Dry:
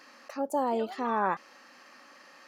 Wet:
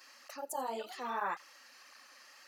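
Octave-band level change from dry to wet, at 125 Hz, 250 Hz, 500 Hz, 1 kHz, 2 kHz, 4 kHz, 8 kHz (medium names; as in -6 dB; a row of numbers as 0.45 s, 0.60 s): under -15 dB, -16.0 dB, -11.0 dB, -7.5 dB, -4.5 dB, -0.5 dB, no reading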